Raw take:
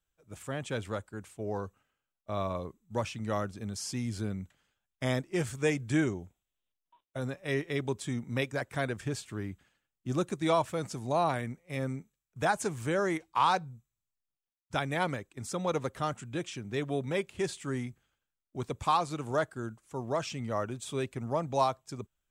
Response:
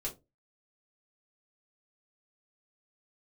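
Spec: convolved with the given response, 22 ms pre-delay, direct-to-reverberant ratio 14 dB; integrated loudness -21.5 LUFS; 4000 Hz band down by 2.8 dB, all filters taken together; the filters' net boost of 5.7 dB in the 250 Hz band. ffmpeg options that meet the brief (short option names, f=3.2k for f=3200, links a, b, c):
-filter_complex "[0:a]equalizer=f=250:t=o:g=7.5,equalizer=f=4k:t=o:g=-3.5,asplit=2[a][b];[1:a]atrim=start_sample=2205,adelay=22[c];[b][c]afir=irnorm=-1:irlink=0,volume=-14.5dB[d];[a][d]amix=inputs=2:normalize=0,volume=9.5dB"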